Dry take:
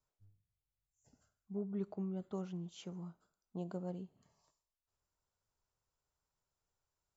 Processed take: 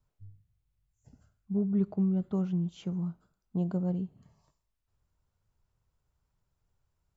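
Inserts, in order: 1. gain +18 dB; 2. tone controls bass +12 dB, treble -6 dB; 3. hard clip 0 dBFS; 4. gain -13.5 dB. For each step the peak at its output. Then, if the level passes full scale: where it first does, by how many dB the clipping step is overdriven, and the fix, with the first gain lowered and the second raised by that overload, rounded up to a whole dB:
-10.0, -4.5, -4.5, -18.0 dBFS; no overload

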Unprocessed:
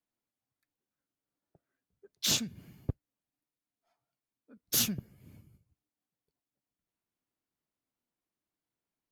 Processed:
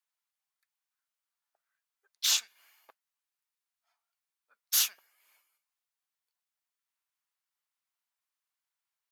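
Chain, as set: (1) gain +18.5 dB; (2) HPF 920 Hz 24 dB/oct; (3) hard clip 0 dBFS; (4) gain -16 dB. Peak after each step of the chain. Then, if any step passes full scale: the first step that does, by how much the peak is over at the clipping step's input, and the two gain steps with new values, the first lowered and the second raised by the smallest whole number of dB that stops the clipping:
+3.5, +4.0, 0.0, -16.0 dBFS; step 1, 4.0 dB; step 1 +14.5 dB, step 4 -12 dB

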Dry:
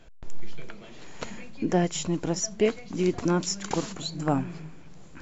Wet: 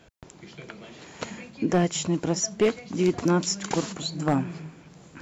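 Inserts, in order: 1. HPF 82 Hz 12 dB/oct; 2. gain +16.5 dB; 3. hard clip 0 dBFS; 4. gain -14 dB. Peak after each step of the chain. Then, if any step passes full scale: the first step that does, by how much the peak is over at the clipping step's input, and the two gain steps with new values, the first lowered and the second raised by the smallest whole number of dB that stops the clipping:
-10.5, +6.0, 0.0, -14.0 dBFS; step 2, 6.0 dB; step 2 +10.5 dB, step 4 -8 dB

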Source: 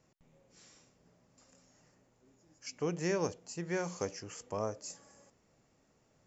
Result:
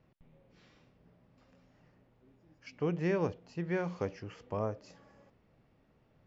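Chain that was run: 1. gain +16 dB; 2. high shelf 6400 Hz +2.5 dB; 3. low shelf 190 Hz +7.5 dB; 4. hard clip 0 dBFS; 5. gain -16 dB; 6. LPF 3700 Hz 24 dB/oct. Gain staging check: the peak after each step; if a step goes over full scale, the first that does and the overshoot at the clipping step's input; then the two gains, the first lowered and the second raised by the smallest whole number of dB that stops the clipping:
-3.5, -3.5, -2.5, -2.5, -18.5, -20.0 dBFS; no overload

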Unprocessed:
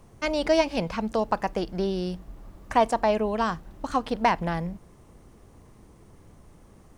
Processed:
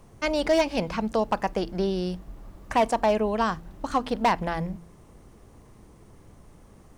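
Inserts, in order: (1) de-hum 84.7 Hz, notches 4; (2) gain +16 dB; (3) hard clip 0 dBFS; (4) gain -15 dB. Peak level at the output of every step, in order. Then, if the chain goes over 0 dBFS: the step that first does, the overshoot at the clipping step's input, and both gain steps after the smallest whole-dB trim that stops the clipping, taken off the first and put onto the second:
-9.0, +7.0, 0.0, -15.0 dBFS; step 2, 7.0 dB; step 2 +9 dB, step 4 -8 dB

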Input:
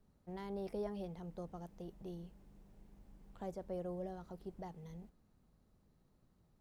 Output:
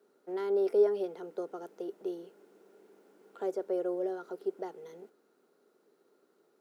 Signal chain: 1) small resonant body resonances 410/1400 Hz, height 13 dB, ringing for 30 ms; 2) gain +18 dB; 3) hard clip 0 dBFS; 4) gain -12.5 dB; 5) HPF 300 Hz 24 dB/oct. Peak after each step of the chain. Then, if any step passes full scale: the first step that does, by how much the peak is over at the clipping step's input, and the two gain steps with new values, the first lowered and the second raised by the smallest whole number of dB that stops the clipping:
-21.0, -3.0, -3.0, -15.5, -16.0 dBFS; no overload

